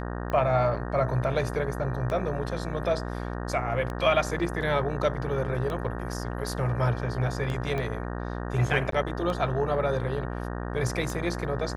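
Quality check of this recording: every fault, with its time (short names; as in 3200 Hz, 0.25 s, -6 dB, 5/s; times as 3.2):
buzz 60 Hz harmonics 31 -33 dBFS
tick 33 1/3 rpm -20 dBFS
7.78 pop -19 dBFS
8.91–8.92 gap 13 ms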